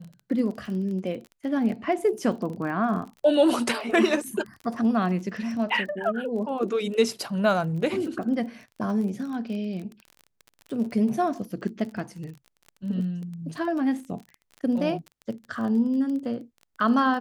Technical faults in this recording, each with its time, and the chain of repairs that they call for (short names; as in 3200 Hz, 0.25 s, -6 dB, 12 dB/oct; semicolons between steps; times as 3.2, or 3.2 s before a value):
crackle 26/s -34 dBFS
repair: de-click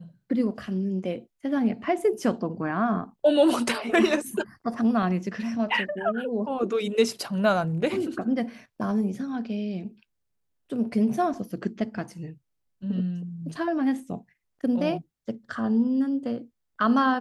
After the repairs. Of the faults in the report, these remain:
none